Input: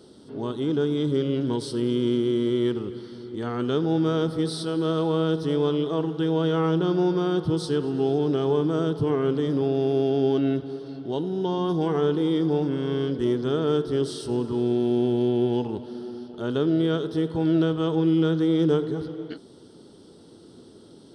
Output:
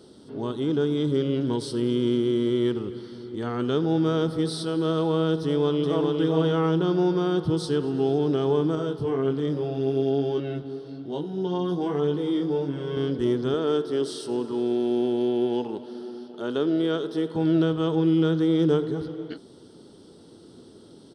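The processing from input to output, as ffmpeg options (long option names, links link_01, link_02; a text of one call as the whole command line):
ffmpeg -i in.wav -filter_complex "[0:a]asplit=2[link_01][link_02];[link_02]afade=type=in:start_time=5.42:duration=0.01,afade=type=out:start_time=6.11:duration=0.01,aecho=0:1:410|820|1230:0.707946|0.106192|0.0159288[link_03];[link_01][link_03]amix=inputs=2:normalize=0,asettb=1/sr,asplit=3[link_04][link_05][link_06];[link_04]atrim=end=8.754[link_07];[link_05]atrim=start=8.75:end=12.97,asetpts=PTS-STARTPTS,afade=type=in:duration=0.004:curve=qsin,afade=type=out:start_time=4.216:duration=0.004:curve=qsin,flanger=delay=20:depth=2.7:speed=1.2[link_08];[link_06]atrim=start=12.966[link_09];[link_07][link_08]acrossfade=duration=0.004:curve1=hsin:curve2=qsin[link_10];[link_10][link_09]acrossfade=duration=0.004:curve1=qsin:curve2=hsin,asettb=1/sr,asplit=3[link_11][link_12][link_13];[link_11]atrim=end=13.544[link_14];[link_12]atrim=start=13.54:end=17.36,asetpts=PTS-STARTPTS,afade=type=in:duration=0.004:curve=qsin,afade=type=out:start_time=3.816:duration=0.004:curve=qsin,highpass=240[link_15];[link_13]atrim=start=17.356[link_16];[link_14][link_15]acrossfade=duration=0.004:curve1=hsin:curve2=qsin[link_17];[link_17][link_16]acrossfade=duration=0.004:curve1=qsin:curve2=hsin" out.wav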